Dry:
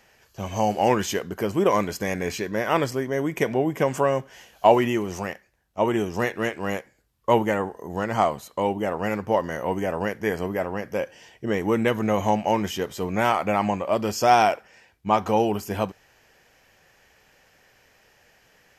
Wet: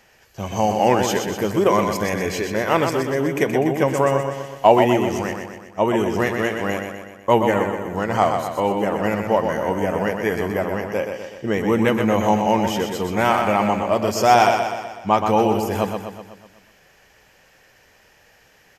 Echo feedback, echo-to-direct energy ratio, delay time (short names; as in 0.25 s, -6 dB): 55%, -4.5 dB, 0.124 s